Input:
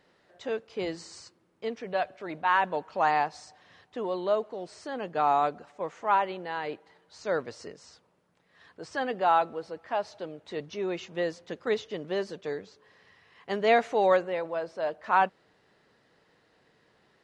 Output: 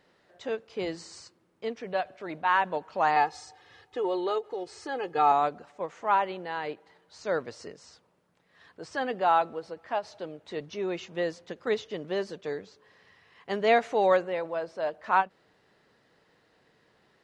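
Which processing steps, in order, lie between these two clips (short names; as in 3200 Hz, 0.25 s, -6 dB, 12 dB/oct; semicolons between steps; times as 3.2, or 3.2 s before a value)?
3.16–5.32 comb 2.4 ms, depth 82%; ending taper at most 410 dB/s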